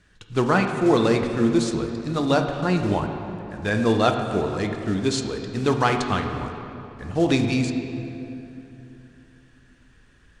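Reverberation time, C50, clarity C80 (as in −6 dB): 3.0 s, 5.5 dB, 6.5 dB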